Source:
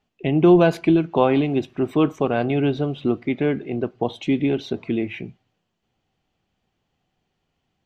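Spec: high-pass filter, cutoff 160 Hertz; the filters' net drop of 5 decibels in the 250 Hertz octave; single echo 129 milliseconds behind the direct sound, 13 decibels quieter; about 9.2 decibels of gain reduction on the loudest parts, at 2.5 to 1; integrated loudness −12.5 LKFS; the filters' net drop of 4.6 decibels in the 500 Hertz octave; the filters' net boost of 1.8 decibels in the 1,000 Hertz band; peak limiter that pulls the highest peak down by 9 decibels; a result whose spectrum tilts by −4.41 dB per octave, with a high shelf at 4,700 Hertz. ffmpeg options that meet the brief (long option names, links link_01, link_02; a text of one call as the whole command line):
ffmpeg -i in.wav -af "highpass=160,equalizer=frequency=250:width_type=o:gain=-4,equalizer=frequency=500:width_type=o:gain=-6,equalizer=frequency=1000:width_type=o:gain=5,highshelf=frequency=4700:gain=8,acompressor=threshold=-27dB:ratio=2.5,alimiter=limit=-22.5dB:level=0:latency=1,aecho=1:1:129:0.224,volume=20.5dB" out.wav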